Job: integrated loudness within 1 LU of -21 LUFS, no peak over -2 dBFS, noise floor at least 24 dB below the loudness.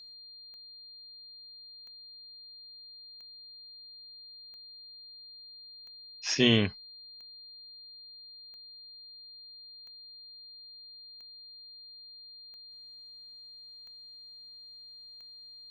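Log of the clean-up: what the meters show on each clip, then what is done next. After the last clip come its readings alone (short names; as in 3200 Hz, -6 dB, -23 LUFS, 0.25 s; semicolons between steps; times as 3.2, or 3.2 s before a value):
clicks 12; steady tone 4200 Hz; tone level -47 dBFS; loudness -38.5 LUFS; peak -9.0 dBFS; loudness target -21.0 LUFS
-> de-click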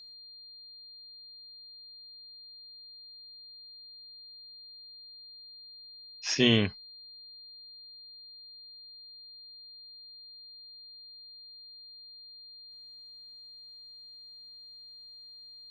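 clicks 0; steady tone 4200 Hz; tone level -47 dBFS
-> notch 4200 Hz, Q 30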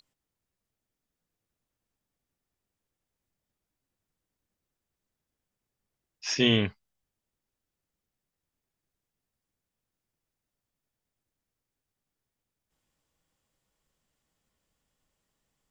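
steady tone none; loudness -26.0 LUFS; peak -9.0 dBFS; loudness target -21.0 LUFS
-> gain +5 dB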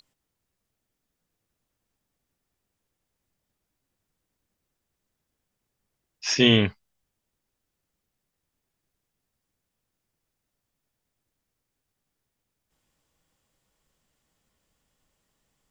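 loudness -21.0 LUFS; peak -4.0 dBFS; noise floor -83 dBFS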